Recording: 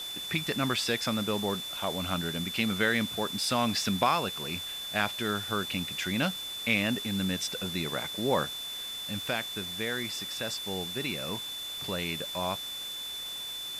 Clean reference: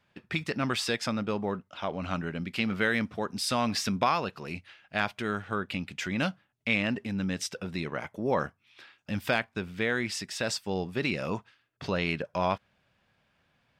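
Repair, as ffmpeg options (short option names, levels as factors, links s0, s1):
-af "bandreject=f=3500:w=30,afwtdn=0.0063,asetnsamples=n=441:p=0,asendcmd='8.45 volume volume 5dB',volume=1"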